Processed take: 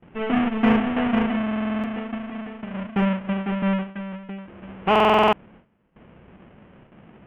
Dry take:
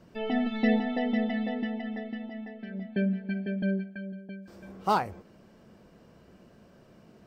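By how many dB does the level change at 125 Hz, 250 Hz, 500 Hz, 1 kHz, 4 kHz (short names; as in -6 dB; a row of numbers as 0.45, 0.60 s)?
+6.5, +6.5, +9.5, +10.0, +11.5 dB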